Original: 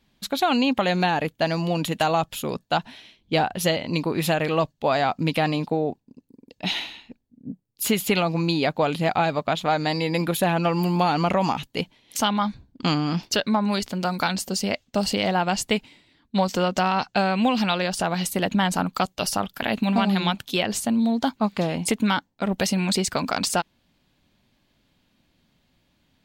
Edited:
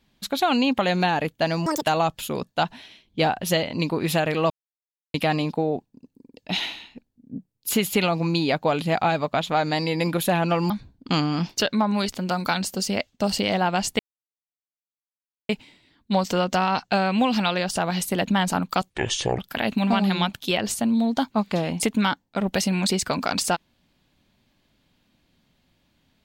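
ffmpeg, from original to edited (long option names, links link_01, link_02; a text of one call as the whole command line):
ffmpeg -i in.wav -filter_complex "[0:a]asplit=9[link_01][link_02][link_03][link_04][link_05][link_06][link_07][link_08][link_09];[link_01]atrim=end=1.664[link_10];[link_02]atrim=start=1.66:end=1.96,asetpts=PTS-STARTPTS,asetrate=82026,aresample=44100[link_11];[link_03]atrim=start=1.956:end=4.64,asetpts=PTS-STARTPTS,afade=type=out:start_time=2.68:duration=0.004:curve=hsin[link_12];[link_04]atrim=start=4.64:end=5.28,asetpts=PTS-STARTPTS,volume=0[link_13];[link_05]atrim=start=5.28:end=10.842,asetpts=PTS-STARTPTS,afade=type=in:duration=0.004:curve=hsin[link_14];[link_06]atrim=start=12.438:end=15.73,asetpts=PTS-STARTPTS,afade=type=out:start_time=3.288:duration=0.004:curve=hsin,apad=pad_dur=1.5[link_15];[link_07]atrim=start=15.73:end=19.144,asetpts=PTS-STARTPTS,afade=type=in:duration=0.004:curve=hsin[link_16];[link_08]atrim=start=19.14:end=19.44,asetpts=PTS-STARTPTS,asetrate=27342,aresample=44100[link_17];[link_09]atrim=start=19.436[link_18];[link_10][link_11]acrossfade=duration=0.004:curve1=hsin:curve2=hsin[link_19];[link_12][link_13][link_14]concat=n=3:v=0:a=1[link_20];[link_19][link_20]acrossfade=duration=0.004:curve1=hsin:curve2=hsin[link_21];[link_15][link_16]concat=n=2:v=0:a=1[link_22];[link_21][link_22]acrossfade=duration=0.004:curve1=hsin:curve2=hsin[link_23];[link_23][link_17]acrossfade=duration=0.004:curve1=hsin:curve2=hsin[link_24];[link_24][link_18]acrossfade=duration=0.004:curve1=hsin:curve2=hsin" out.wav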